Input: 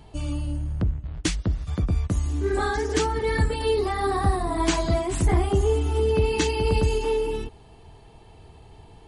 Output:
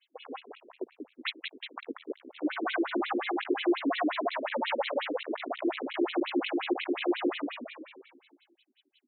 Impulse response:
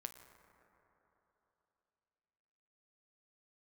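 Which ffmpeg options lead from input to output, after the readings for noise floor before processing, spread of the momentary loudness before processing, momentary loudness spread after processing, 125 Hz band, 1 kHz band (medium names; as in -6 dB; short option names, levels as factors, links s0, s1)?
-49 dBFS, 7 LU, 15 LU, under -40 dB, -6.0 dB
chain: -filter_complex "[0:a]acrossover=split=200|3300[s0][s1][s2];[s1]acrusher=bits=4:mix=0:aa=0.5[s3];[s0][s3][s2]amix=inputs=3:normalize=0,afreqshift=-94,asplit=7[s4][s5][s6][s7][s8][s9][s10];[s5]adelay=187,afreqshift=-67,volume=0.473[s11];[s6]adelay=374,afreqshift=-134,volume=0.232[s12];[s7]adelay=561,afreqshift=-201,volume=0.114[s13];[s8]adelay=748,afreqshift=-268,volume=0.0556[s14];[s9]adelay=935,afreqshift=-335,volume=0.0272[s15];[s10]adelay=1122,afreqshift=-402,volume=0.0133[s16];[s4][s11][s12][s13][s14][s15][s16]amix=inputs=7:normalize=0,volume=20,asoftclip=hard,volume=0.0501,afftfilt=real='re*between(b*sr/1024,320*pow(3000/320,0.5+0.5*sin(2*PI*5.6*pts/sr))/1.41,320*pow(3000/320,0.5+0.5*sin(2*PI*5.6*pts/sr))*1.41)':imag='im*between(b*sr/1024,320*pow(3000/320,0.5+0.5*sin(2*PI*5.6*pts/sr))/1.41,320*pow(3000/320,0.5+0.5*sin(2*PI*5.6*pts/sr))*1.41)':win_size=1024:overlap=0.75,volume=2.11"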